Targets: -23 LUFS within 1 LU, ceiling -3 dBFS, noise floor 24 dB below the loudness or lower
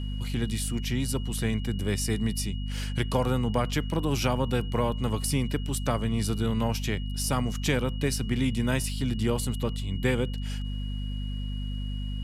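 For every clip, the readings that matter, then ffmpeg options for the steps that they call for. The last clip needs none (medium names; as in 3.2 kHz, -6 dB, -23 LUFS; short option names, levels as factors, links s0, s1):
hum 50 Hz; highest harmonic 250 Hz; hum level -29 dBFS; steady tone 2.9 kHz; tone level -45 dBFS; loudness -29.0 LUFS; peak level -11.5 dBFS; loudness target -23.0 LUFS
-> -af "bandreject=f=50:t=h:w=6,bandreject=f=100:t=h:w=6,bandreject=f=150:t=h:w=6,bandreject=f=200:t=h:w=6,bandreject=f=250:t=h:w=6"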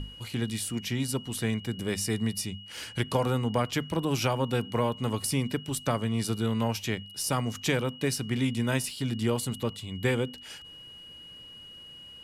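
hum not found; steady tone 2.9 kHz; tone level -45 dBFS
-> -af "bandreject=f=2900:w=30"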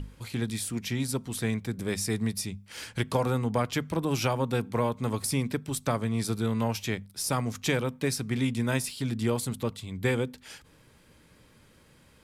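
steady tone not found; loudness -30.0 LUFS; peak level -13.0 dBFS; loudness target -23.0 LUFS
-> -af "volume=2.24"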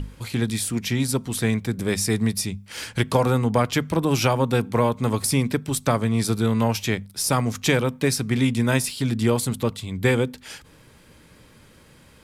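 loudness -23.0 LUFS; peak level -6.0 dBFS; noise floor -52 dBFS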